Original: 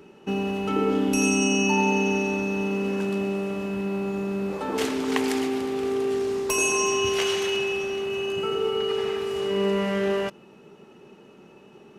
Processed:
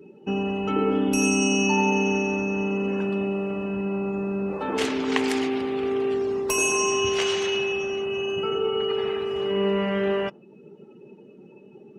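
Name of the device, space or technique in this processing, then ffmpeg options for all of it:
parallel compression: -filter_complex "[0:a]asettb=1/sr,asplit=3[a][b][c];[a]atrim=end=4.624[d];[b]atrim=start=4.62:end=6.14,asetpts=PTS-STARTPTS,afade=t=in:d=0.004:c=qsin,afade=t=out:st=1.516:d=0.004:c=qsin,equalizer=f=2.5k:t=o:w=1.4:g=3[e];[c]atrim=start=6.136[f];[d][e]acrossfade=d=0.004:c1=hsin:c2=qsin[g];[g][f]acrossfade=d=0.004:c1=qsin:c2=hsin,asplit=2[h][i];[i]acompressor=threshold=-42dB:ratio=6,volume=-6.5dB[j];[h][j]amix=inputs=2:normalize=0,afftdn=nr=19:nf=-43"

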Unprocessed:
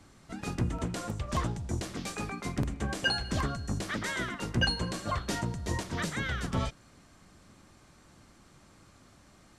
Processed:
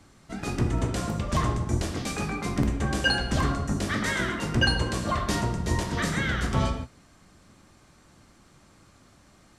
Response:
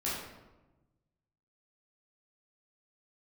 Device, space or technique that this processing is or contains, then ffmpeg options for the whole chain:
keyed gated reverb: -filter_complex "[0:a]asplit=3[a][b][c];[1:a]atrim=start_sample=2205[d];[b][d]afir=irnorm=-1:irlink=0[e];[c]apad=whole_len=422691[f];[e][f]sidechaingate=range=-33dB:threshold=-50dB:ratio=16:detection=peak,volume=-5.5dB[g];[a][g]amix=inputs=2:normalize=0,volume=1.5dB"

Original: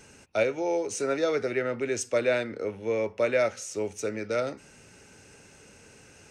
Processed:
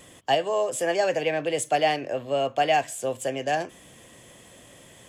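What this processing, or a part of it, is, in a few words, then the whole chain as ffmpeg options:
nightcore: -af "asetrate=54684,aresample=44100,volume=3dB"

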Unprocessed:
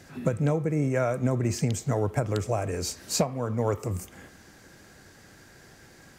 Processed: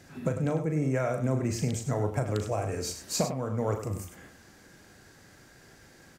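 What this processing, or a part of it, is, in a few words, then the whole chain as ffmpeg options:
slapback doubling: -filter_complex "[0:a]asplit=3[a][b][c];[b]adelay=38,volume=-8dB[d];[c]adelay=99,volume=-9.5dB[e];[a][d][e]amix=inputs=3:normalize=0,volume=-3.5dB"

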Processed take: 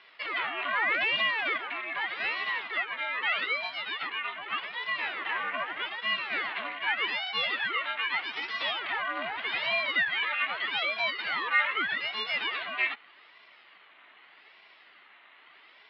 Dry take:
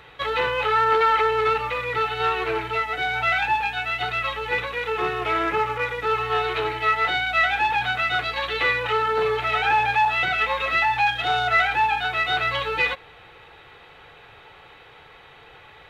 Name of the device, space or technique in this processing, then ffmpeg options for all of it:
voice changer toy: -filter_complex "[0:a]lowpass=5.4k,asettb=1/sr,asplit=3[a][b][c];[a]atrim=end=4.074[d];[b]atrim=start=4.07:end=4.95,asetpts=PTS-STARTPTS,afade=t=in:d=0.004:c=qsin,afade=t=out:st=0.876:d=0.004:c=qsin,aemphasis=mode=reproduction:type=50fm[e];[c]atrim=start=4.946[f];[d][e]acrossfade=d=0.004:c1=hsin:c2=qsin[g];[g][f]acrossfade=d=0.004:c1=qsin:c2=hsin,aeval=exprs='val(0)*sin(2*PI*830*n/s+830*0.85/0.82*sin(2*PI*0.82*n/s))':c=same,highpass=440,equalizer=f=520:t=q:w=4:g=-6,equalizer=f=1.2k:t=q:w=4:g=4,equalizer=f=2k:t=q:w=4:g=9,equalizer=f=2.9k:t=q:w=4:g=5,lowpass=f=4.6k:w=0.5412,lowpass=f=4.6k:w=1.3066,volume=-8.5dB"

